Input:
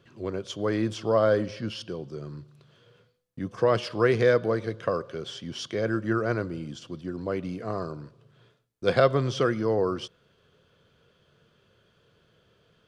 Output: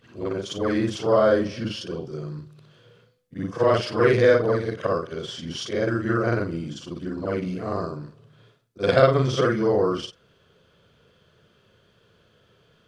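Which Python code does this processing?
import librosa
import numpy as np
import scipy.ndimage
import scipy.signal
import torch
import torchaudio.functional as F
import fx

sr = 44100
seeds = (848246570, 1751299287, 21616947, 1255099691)

y = fx.frame_reverse(x, sr, frame_ms=121.0)
y = F.gain(torch.from_numpy(y), 7.0).numpy()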